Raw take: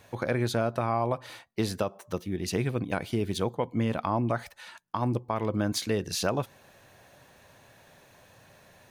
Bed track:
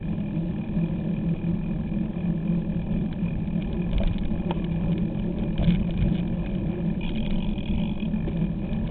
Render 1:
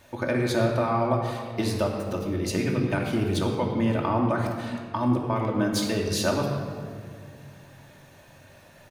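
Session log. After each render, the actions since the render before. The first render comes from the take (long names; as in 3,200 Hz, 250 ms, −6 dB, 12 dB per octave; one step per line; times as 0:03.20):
double-tracking delay 20 ms −12.5 dB
rectangular room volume 3,700 cubic metres, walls mixed, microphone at 2.6 metres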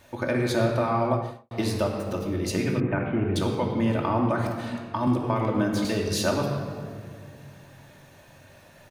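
0:01.09–0:01.51: fade out and dull
0:02.80–0:03.36: inverse Chebyshev low-pass filter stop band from 5,600 Hz, stop band 50 dB
0:05.07–0:05.85: multiband upward and downward compressor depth 70%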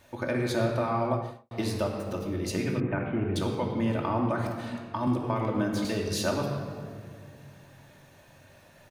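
level −3.5 dB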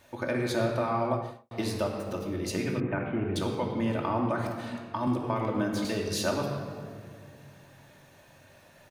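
low-shelf EQ 160 Hz −4 dB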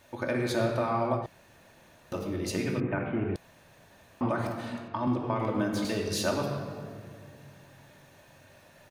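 0:01.26–0:02.12: fill with room tone
0:03.36–0:04.21: fill with room tone
0:04.88–0:05.40: high-frequency loss of the air 88 metres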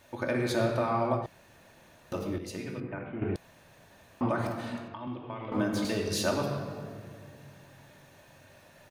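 0:02.38–0:03.22: tuned comb filter 490 Hz, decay 0.58 s
0:04.94–0:05.52: transistor ladder low-pass 3,600 Hz, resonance 55%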